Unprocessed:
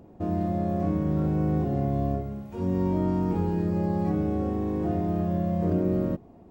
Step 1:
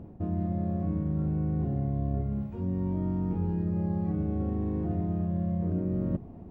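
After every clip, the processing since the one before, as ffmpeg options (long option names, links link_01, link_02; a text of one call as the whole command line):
ffmpeg -i in.wav -af "bass=frequency=250:gain=10,treble=frequency=4000:gain=-12,areverse,acompressor=threshold=-28dB:ratio=4,areverse" out.wav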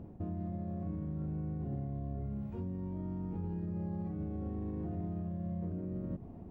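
ffmpeg -i in.wav -af "alimiter=level_in=4dB:limit=-24dB:level=0:latency=1:release=85,volume=-4dB,volume=-3dB" out.wav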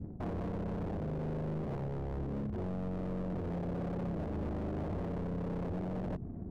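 ffmpeg -i in.wav -af "adynamicsmooth=sensitivity=7:basefreq=550,adynamicequalizer=threshold=0.00141:dfrequency=740:dqfactor=0.8:tfrequency=740:tqfactor=0.8:attack=5:release=100:ratio=0.375:range=2:mode=cutabove:tftype=bell,aeval=exprs='0.0126*(abs(mod(val(0)/0.0126+3,4)-2)-1)':channel_layout=same,volume=6.5dB" out.wav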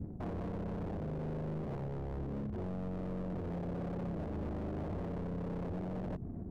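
ffmpeg -i in.wav -af "alimiter=level_in=12dB:limit=-24dB:level=0:latency=1:release=257,volume=-12dB,volume=2.5dB" out.wav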